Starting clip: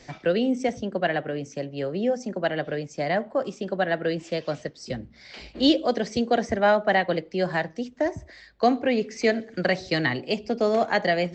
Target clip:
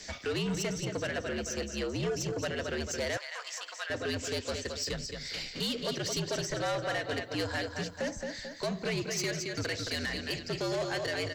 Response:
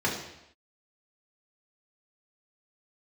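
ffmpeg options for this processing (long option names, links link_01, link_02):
-filter_complex "[0:a]crystalizer=i=6:c=0,alimiter=limit=-14.5dB:level=0:latency=1:release=333,aecho=1:1:220|440|660|880|1100:0.422|0.19|0.0854|0.0384|0.0173,asoftclip=type=tanh:threshold=-23.5dB,afreqshift=-71,asettb=1/sr,asplit=3[link_01][link_02][link_03];[link_01]atrim=end=3.174[link_04];[link_02]atrim=start=3.17:end=3.9,asetpts=PTS-STARTPTS,afade=type=in:duration=0.004:curve=qsin,afade=type=out:start_time=0.726:duration=0.004:curve=qsin,highpass=frequency=860:width=0.5412,highpass=frequency=860:width=1.3066[link_05];[link_03]atrim=start=3.896[link_06];[link_04][link_05]acrossfade=duration=0.004:curve1=hsin:curve2=qsin[link_07];[link_07][link_06]acrossfade=duration=0.004:curve1=qsin:curve2=hsin,volume=-4dB"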